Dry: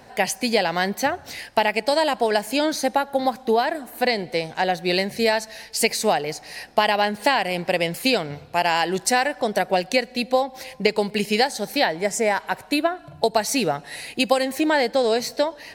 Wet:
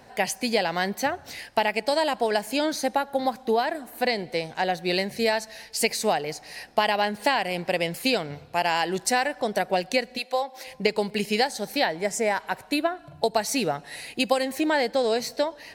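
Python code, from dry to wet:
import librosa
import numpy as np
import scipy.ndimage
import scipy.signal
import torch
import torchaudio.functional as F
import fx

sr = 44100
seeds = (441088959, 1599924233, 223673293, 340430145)

y = fx.highpass(x, sr, hz=fx.line((10.17, 800.0), (10.66, 300.0)), slope=12, at=(10.17, 10.66), fade=0.02)
y = F.gain(torch.from_numpy(y), -3.5).numpy()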